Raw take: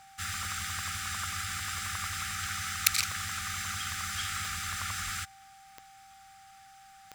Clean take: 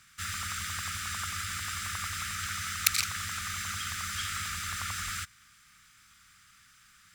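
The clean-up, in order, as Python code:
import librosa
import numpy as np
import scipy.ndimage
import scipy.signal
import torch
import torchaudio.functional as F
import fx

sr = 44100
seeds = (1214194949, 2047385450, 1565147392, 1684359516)

y = fx.fix_declick_ar(x, sr, threshold=10.0)
y = fx.notch(y, sr, hz=780.0, q=30.0)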